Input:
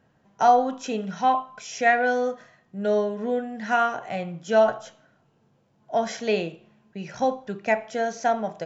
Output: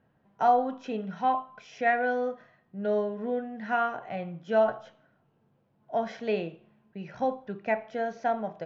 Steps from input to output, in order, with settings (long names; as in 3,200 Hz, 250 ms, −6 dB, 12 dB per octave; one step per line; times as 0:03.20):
high-frequency loss of the air 250 metres
level −4 dB